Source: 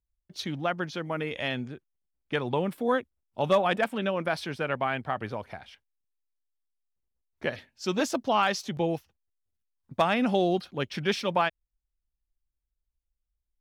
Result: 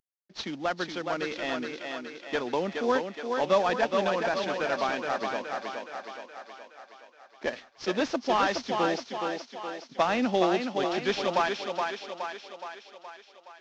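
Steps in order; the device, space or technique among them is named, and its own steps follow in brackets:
early wireless headset (high-pass filter 210 Hz 24 dB per octave; variable-slope delta modulation 32 kbit/s)
feedback echo with a high-pass in the loop 420 ms, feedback 59%, high-pass 240 Hz, level −4 dB

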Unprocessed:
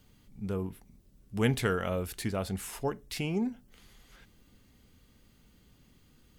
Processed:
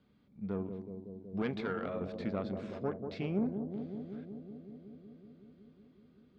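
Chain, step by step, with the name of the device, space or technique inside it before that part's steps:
0:01.42–0:02.01: low-shelf EQ 240 Hz −11.5 dB
analogue delay pedal into a guitar amplifier (bucket-brigade delay 186 ms, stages 1,024, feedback 80%, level −7 dB; tube saturation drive 24 dB, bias 0.65; loudspeaker in its box 98–3,500 Hz, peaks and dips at 110 Hz −9 dB, 210 Hz +3 dB, 880 Hz −5 dB, 1,900 Hz −6 dB, 2,900 Hz −10 dB)

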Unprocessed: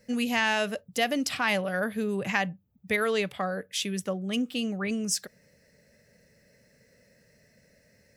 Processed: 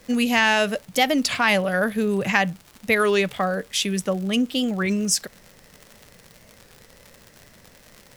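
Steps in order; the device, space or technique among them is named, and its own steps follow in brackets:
warped LP (wow of a warped record 33 1/3 rpm, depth 160 cents; surface crackle 110 per second −39 dBFS; pink noise bed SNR 31 dB)
level +7 dB

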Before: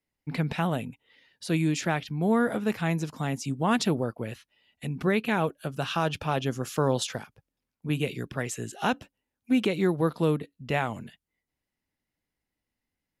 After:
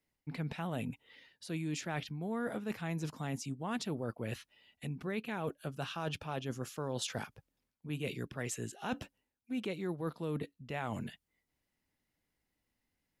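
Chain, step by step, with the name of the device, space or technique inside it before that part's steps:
compression on the reversed sound (reversed playback; downward compressor 6 to 1, threshold −37 dBFS, peak gain reduction 17 dB; reversed playback)
level +1.5 dB

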